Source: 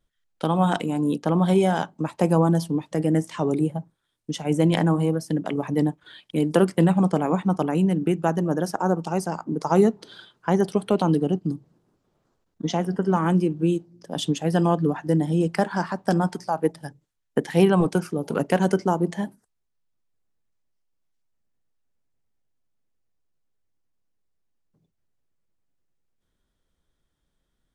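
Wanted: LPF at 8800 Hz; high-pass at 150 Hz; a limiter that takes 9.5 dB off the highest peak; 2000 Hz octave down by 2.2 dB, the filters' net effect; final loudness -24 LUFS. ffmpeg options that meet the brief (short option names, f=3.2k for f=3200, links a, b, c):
-af "highpass=150,lowpass=8.8k,equalizer=f=2k:t=o:g=-3,volume=2.5dB,alimiter=limit=-13dB:level=0:latency=1"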